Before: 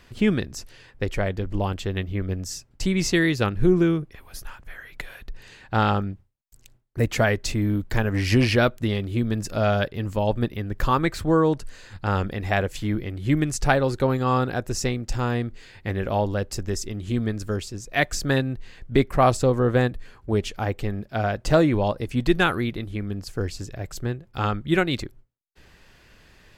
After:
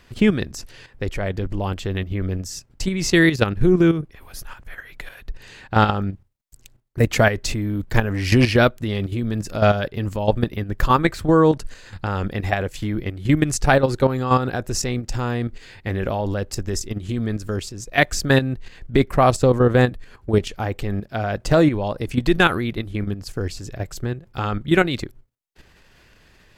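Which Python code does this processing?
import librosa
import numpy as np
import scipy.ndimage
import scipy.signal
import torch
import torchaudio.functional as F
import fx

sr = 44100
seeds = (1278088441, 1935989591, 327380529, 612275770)

y = fx.level_steps(x, sr, step_db=10)
y = y * 10.0 ** (7.0 / 20.0)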